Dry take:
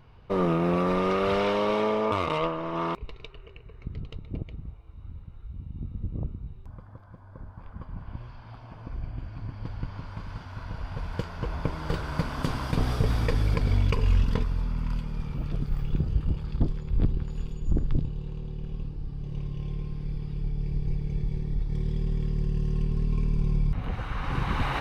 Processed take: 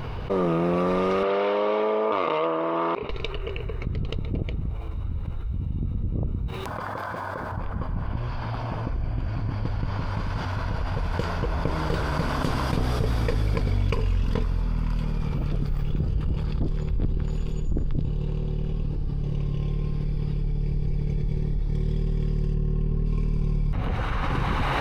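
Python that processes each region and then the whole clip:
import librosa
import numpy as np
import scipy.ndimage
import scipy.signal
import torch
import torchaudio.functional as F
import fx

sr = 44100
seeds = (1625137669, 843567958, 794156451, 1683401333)

y = fx.chain(x, sr, fx.highpass(hz=290.0, slope=12),
    fx.air_absorb(metres=200.0), at=(1.23, 3.1))
y = fx.chain(y, sr, fx.highpass(hz=1100.0, slope=6),
    fx.env_flatten(amount_pct=100), at=(6.48, 7.52))
y = fx.chain(y, sr, fx.median_filter(points=5),
    fx.high_shelf(hz=2600.0, db=-11.0), at=(22.54, 23.06))
y = fx.peak_eq(y, sr, hz=490.0, db=3.0, octaves=1.1)
y = fx.env_flatten(y, sr, amount_pct=70)
y = y * 10.0 ** (-3.5 / 20.0)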